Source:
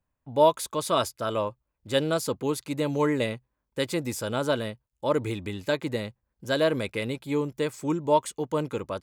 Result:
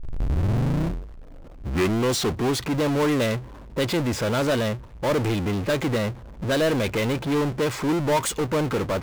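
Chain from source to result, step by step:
turntable start at the beginning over 2.69 s
low-pass that shuts in the quiet parts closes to 600 Hz, open at −20 dBFS
power curve on the samples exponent 0.35
level −5 dB

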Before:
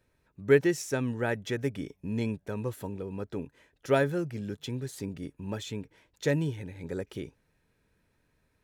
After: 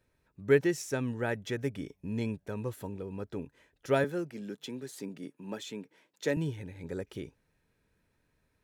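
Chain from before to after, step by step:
0:04.04–0:06.37: high-pass filter 180 Hz 24 dB per octave
level −2.5 dB

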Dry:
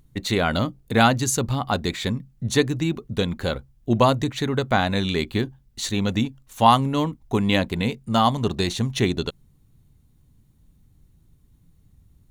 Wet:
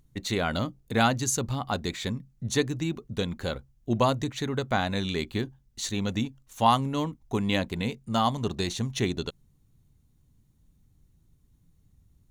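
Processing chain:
parametric band 6,300 Hz +4 dB 0.55 octaves
level −6 dB

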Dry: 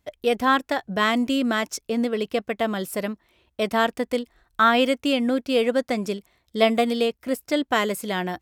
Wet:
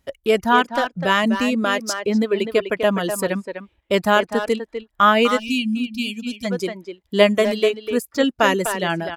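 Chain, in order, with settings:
reverb reduction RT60 2 s
far-end echo of a speakerphone 230 ms, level −7 dB
speech leveller within 3 dB 2 s
gain on a spectral selection 0:04.95–0:05.93, 290–2,500 Hz −28 dB
wrong playback speed 48 kHz file played as 44.1 kHz
level +4 dB

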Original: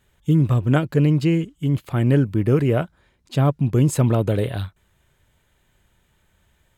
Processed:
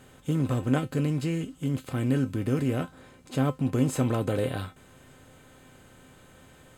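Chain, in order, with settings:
compressor on every frequency bin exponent 0.6
0:00.78–0:02.81: dynamic equaliser 850 Hz, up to −5 dB, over −33 dBFS, Q 0.7
tuned comb filter 260 Hz, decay 0.17 s, harmonics all, mix 80%

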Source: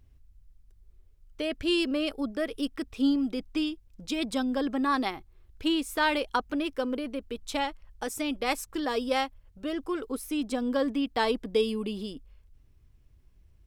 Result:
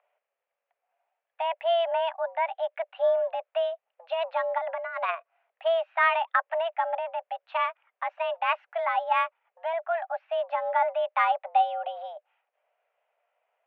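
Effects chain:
0:04.58–0:05.15: compressor whose output falls as the input rises −31 dBFS, ratio −0.5
single-sideband voice off tune +330 Hz 270–2,400 Hz
level +3.5 dB

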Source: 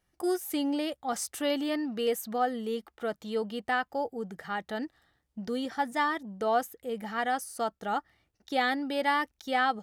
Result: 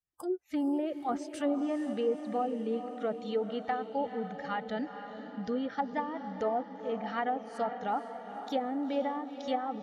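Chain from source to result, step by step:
spectral magnitudes quantised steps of 15 dB
dynamic equaliser 1,600 Hz, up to −5 dB, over −48 dBFS, Q 5.5
treble cut that deepens with the level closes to 560 Hz, closed at −24.5 dBFS
noise reduction from a noise print of the clip's start 22 dB
on a send: feedback delay with all-pass diffusion 474 ms, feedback 56%, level −9.5 dB

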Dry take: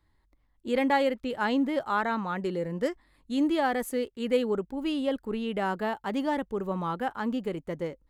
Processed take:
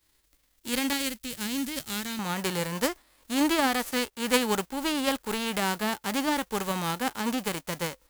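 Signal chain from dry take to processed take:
spectral envelope flattened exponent 0.3
parametric band 830 Hz −7 dB 2.3 octaves, from 0:00.93 −14.5 dB, from 0:02.19 +2.5 dB

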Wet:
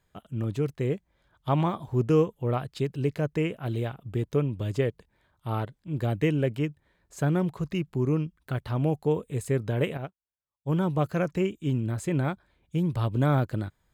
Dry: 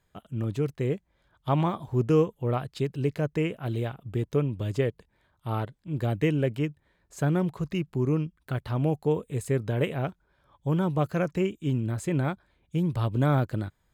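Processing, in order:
0:09.97–0:10.73: expander for the loud parts 2.5 to 1, over −47 dBFS

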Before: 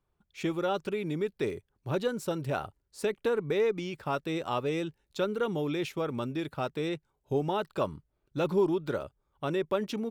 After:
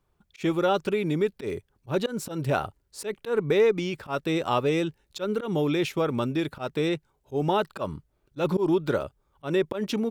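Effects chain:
volume swells 120 ms
level +6.5 dB

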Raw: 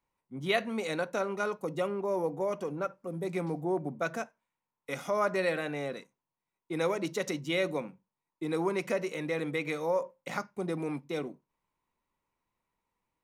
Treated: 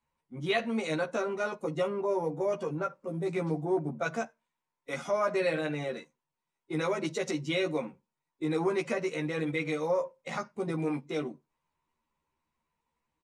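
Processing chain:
spectral magnitudes quantised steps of 15 dB
low-pass filter 9,300 Hz 24 dB per octave
in parallel at −1.5 dB: brickwall limiter −23 dBFS, peak gain reduction 9.5 dB
on the sum: double-tracking delay 13 ms −2.5 dB
level −5.5 dB

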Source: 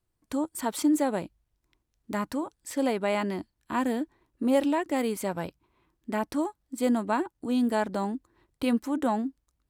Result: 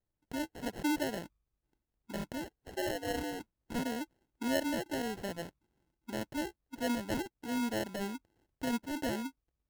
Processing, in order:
0:02.60–0:03.40: frequency shifter +94 Hz
decimation without filtering 37×
level −8.5 dB

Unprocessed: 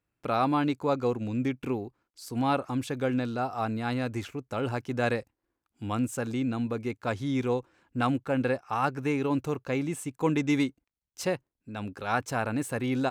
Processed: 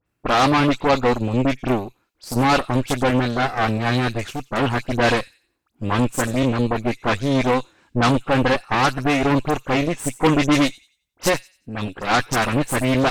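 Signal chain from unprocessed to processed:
delay with a high-pass on its return 91 ms, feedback 31%, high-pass 3,300 Hz, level −12 dB
pitch vibrato 0.96 Hz 31 cents
all-pass dispersion highs, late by 60 ms, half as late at 2,900 Hz
harmonic generator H 8 −13 dB, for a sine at −14 dBFS
level +8 dB

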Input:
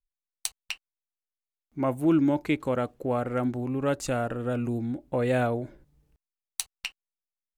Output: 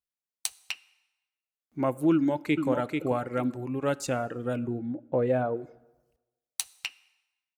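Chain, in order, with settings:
high-pass filter 98 Hz 12 dB per octave
reverb reduction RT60 0.83 s
0:04.59–0:05.57: drawn EQ curve 260 Hz 0 dB, 470 Hz +3 dB, 10,000 Hz −21 dB, 15,000 Hz −17 dB
dense smooth reverb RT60 1.1 s, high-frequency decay 0.85×, DRR 19.5 dB
0:02.13–0:02.68: delay throw 440 ms, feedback 20%, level −4.5 dB

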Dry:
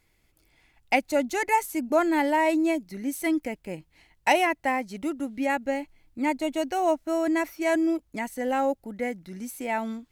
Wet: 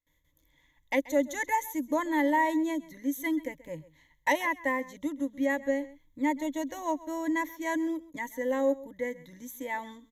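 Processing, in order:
noise gate with hold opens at −57 dBFS
EQ curve with evenly spaced ripples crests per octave 1.1, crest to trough 17 dB
single-tap delay 132 ms −19 dB
level −8 dB

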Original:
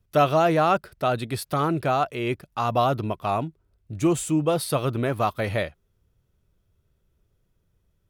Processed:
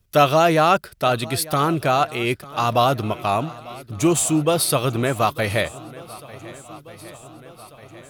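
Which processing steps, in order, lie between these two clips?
high-shelf EQ 2,300 Hz +8.5 dB
on a send: feedback echo with a long and a short gap by turns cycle 1,492 ms, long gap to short 1.5 to 1, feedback 56%, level −20 dB
on the sum: level +3 dB

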